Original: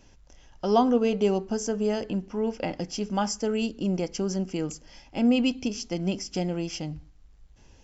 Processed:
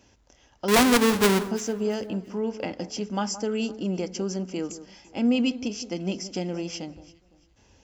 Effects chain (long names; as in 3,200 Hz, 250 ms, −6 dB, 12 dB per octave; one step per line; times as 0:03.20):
0:00.68–0:01.49: each half-wave held at its own peak
high-pass filter 72 Hz 12 dB per octave
parametric band 150 Hz −12.5 dB 0.23 octaves
wrap-around overflow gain 10 dB
on a send: delay that swaps between a low-pass and a high-pass 170 ms, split 1,500 Hz, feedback 50%, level −13.5 dB
on the sum: dynamic equaliser 700 Hz, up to −4 dB, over −37 dBFS, Q 2.5